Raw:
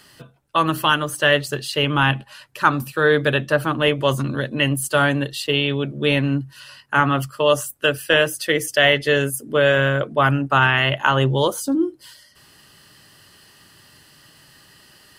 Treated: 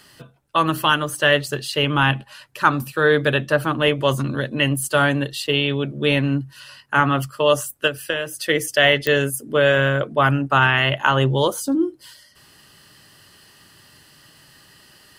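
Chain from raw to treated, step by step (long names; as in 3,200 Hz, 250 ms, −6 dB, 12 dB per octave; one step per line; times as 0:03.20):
0:07.87–0:08.44: downward compressor 10 to 1, threshold −20 dBFS, peak gain reduction 10 dB
digital clicks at 0:09.07, −7 dBFS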